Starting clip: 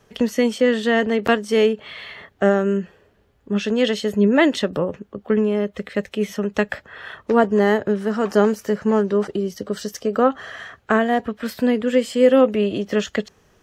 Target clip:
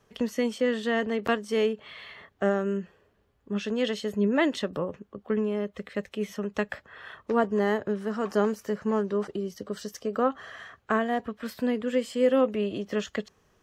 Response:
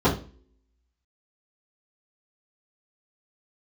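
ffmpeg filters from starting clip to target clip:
-af "equalizer=f=1.1k:w=6.2:g=4.5,volume=-8.5dB"

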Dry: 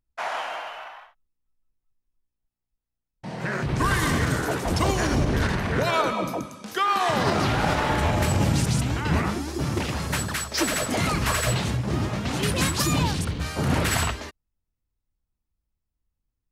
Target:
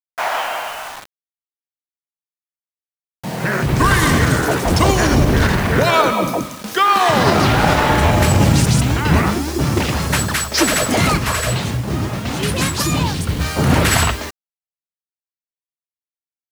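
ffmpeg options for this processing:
-filter_complex "[0:a]acrusher=bits=6:mix=0:aa=0.000001,asettb=1/sr,asplit=3[a][b][c];[a]atrim=end=11.174[d];[b]atrim=start=11.17:end=13.29,asetpts=PTS-STARTPTS,afade=t=in:d=0.004:c=qsin,afade=t=out:st=2.116:d=0.004:c=qsin,flanger=delay=7.2:depth=5.6:regen=-68:speed=2:shape=sinusoidal[e];[c]atrim=start=13.286[f];[d][e]acrossfade=d=0.004:c1=hsin:c2=qsin[g];[g][f]acrossfade=d=0.004:c1=qsin:c2=hsin,volume=9dB"

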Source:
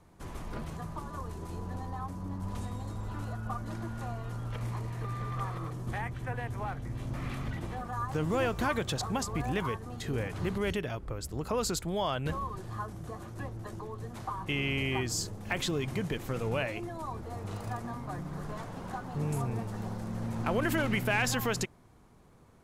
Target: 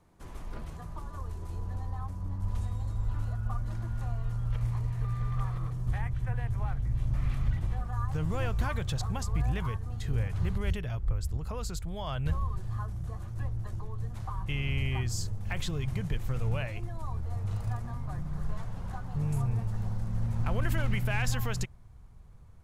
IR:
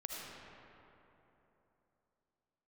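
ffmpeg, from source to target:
-filter_complex "[0:a]asubboost=boost=10:cutoff=90,asettb=1/sr,asplit=3[a][b][c];[a]atrim=end=11.364[d];[b]atrim=start=11.36:end=12.07,asetpts=PTS-STARTPTS,afade=t=in:d=0.004:c=qsin,afade=t=out:st=0.706:d=0.004:c=qsin,acompressor=threshold=-27dB:ratio=3[e];[c]atrim=start=12.066[f];[d][e]acrossfade=d=0.004:c1=hsin:c2=qsin[g];[g][f]acrossfade=d=0.004:c1=qsin:c2=hsin,volume=-4.5dB"

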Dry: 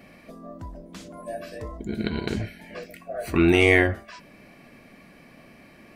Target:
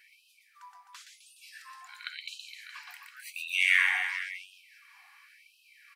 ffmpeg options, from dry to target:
-af "aecho=1:1:120|258|416.7|599.2|809.1:0.631|0.398|0.251|0.158|0.1,afftfilt=real='re*gte(b*sr/1024,720*pow(2500/720,0.5+0.5*sin(2*PI*0.94*pts/sr)))':imag='im*gte(b*sr/1024,720*pow(2500/720,0.5+0.5*sin(2*PI*0.94*pts/sr)))':win_size=1024:overlap=0.75,volume=-3.5dB"

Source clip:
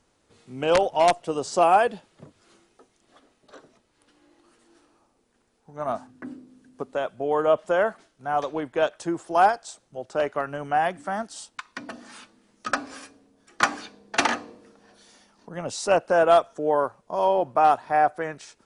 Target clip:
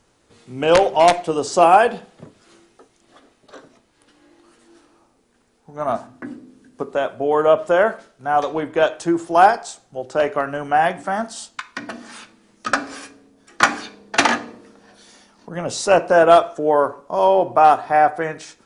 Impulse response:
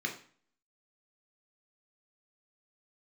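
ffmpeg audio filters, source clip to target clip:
-filter_complex "[0:a]asplit=2[a][b];[1:a]atrim=start_sample=2205,adelay=17[c];[b][c]afir=irnorm=-1:irlink=0,volume=-14dB[d];[a][d]amix=inputs=2:normalize=0,volume=6dB"

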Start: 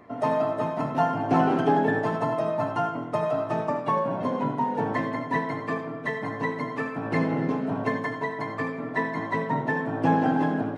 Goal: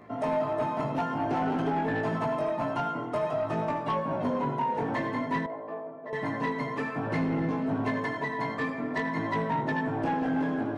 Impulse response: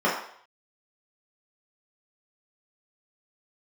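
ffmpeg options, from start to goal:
-filter_complex "[0:a]acompressor=threshold=-25dB:ratio=3,flanger=delay=18:depth=4.4:speed=0.53,aeval=exprs='0.126*(cos(1*acos(clip(val(0)/0.126,-1,1)))-cos(1*PI/2))+0.0158*(cos(5*acos(clip(val(0)/0.126,-1,1)))-cos(5*PI/2))':c=same,asettb=1/sr,asplit=3[a][b][c];[a]atrim=end=5.464[d];[b]atrim=start=5.46:end=6.13,asetpts=PTS-STARTPTS,afade=t=in:d=0.004:c=qsin,afade=t=out:st=0.666:d=0.004:c=qsin,bandpass=f=610:t=q:w=2.5:csg=0[e];[c]atrim=start=6.126[f];[d][e]acrossfade=d=0.004:c1=hsin:c2=qsin[g];[g][f]acrossfade=d=0.004:c1=qsin:c2=hsin,asplit=2[h][i];[1:a]atrim=start_sample=2205[j];[i][j]afir=irnorm=-1:irlink=0,volume=-31dB[k];[h][k]amix=inputs=2:normalize=0"

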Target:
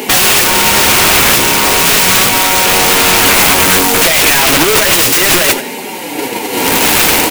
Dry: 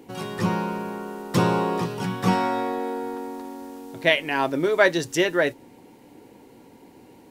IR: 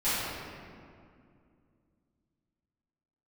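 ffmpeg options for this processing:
-filter_complex "[0:a]asplit=2[a][b];[b]highpass=f=720:p=1,volume=37dB,asoftclip=type=tanh:threshold=-4.5dB[c];[a][c]amix=inputs=2:normalize=0,lowpass=f=3.8k:p=1,volume=-6dB,aemphasis=mode=production:type=75kf,asplit=2[d][e];[e]acrusher=bits=3:mode=log:mix=0:aa=0.000001,volume=-8dB[f];[d][f]amix=inputs=2:normalize=0,flanger=delay=4.7:depth=8.9:regen=-14:speed=0.35:shape=sinusoidal,asplit=2[g][h];[h]aecho=0:1:197:0.0794[i];[g][i]amix=inputs=2:normalize=0,dynaudnorm=f=540:g=3:m=12dB,agate=range=-6dB:threshold=-21dB:ratio=16:detection=peak,aeval=exprs='(mod(3.98*val(0)+1,2)-1)/3.98':c=same,equalizer=f=2.5k:t=o:w=0.67:g=4,volume=8dB"

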